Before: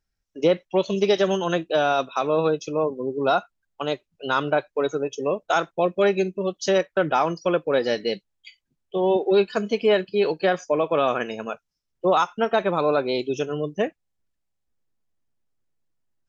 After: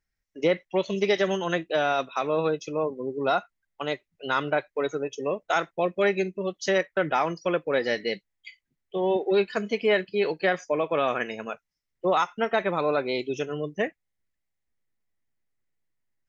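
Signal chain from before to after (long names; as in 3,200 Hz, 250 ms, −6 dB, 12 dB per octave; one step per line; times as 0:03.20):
parametric band 2,000 Hz +11 dB 0.4 octaves
level −4 dB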